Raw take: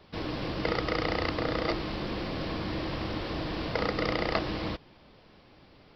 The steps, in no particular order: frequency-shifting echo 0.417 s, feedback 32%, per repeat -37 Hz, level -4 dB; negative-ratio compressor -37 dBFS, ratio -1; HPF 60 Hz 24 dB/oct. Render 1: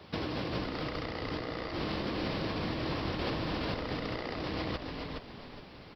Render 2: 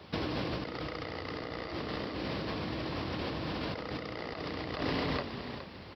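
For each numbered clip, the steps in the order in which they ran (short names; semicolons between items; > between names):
HPF > negative-ratio compressor > frequency-shifting echo; frequency-shifting echo > HPF > negative-ratio compressor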